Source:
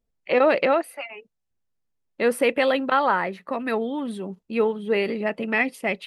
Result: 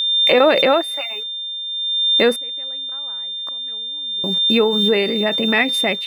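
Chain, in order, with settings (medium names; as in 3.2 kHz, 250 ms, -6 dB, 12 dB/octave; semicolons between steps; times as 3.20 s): bit crusher 9-bit; 2.33–4.24 s: inverted gate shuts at -26 dBFS, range -30 dB; whistle 3.6 kHz -29 dBFS; swell ahead of each attack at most 25 dB/s; trim +4.5 dB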